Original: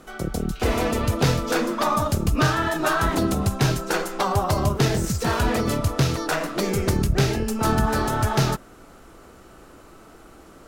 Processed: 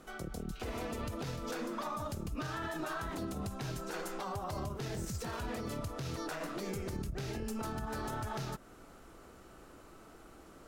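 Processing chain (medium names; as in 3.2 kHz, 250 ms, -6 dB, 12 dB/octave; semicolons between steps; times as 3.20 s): compression, threshold -25 dBFS, peak gain reduction 10.5 dB; peak limiter -22 dBFS, peak gain reduction 8.5 dB; trim -8 dB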